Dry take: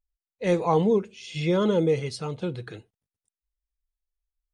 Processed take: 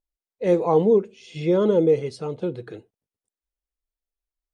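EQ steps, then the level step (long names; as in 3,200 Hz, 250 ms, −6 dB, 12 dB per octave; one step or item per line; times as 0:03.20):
parametric band 410 Hz +11.5 dB 2.3 octaves
−6.0 dB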